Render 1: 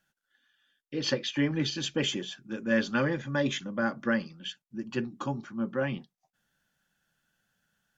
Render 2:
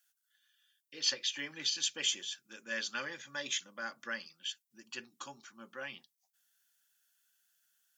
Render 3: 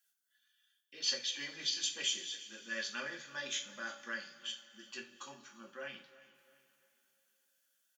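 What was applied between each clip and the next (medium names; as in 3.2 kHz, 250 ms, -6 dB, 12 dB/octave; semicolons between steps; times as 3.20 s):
differentiator; trim +6 dB
feedback delay 347 ms, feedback 33%, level -19 dB; two-slope reverb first 0.29 s, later 3.3 s, from -21 dB, DRR 0.5 dB; trim -5 dB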